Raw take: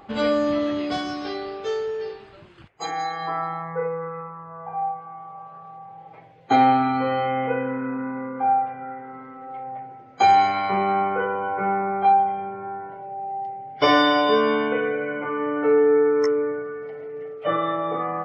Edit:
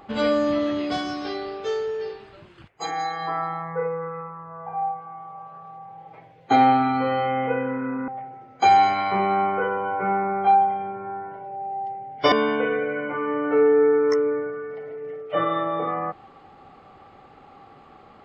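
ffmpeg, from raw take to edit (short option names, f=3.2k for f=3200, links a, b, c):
-filter_complex "[0:a]asplit=3[a][b][c];[a]atrim=end=8.082[d];[b]atrim=start=9.658:end=13.902[e];[c]atrim=start=14.438[f];[d][e]acrossfade=d=0.004:c1=hsin:c2=hsin[g];[g][f]acrossfade=d=0.004:c1=hsin:c2=hsin"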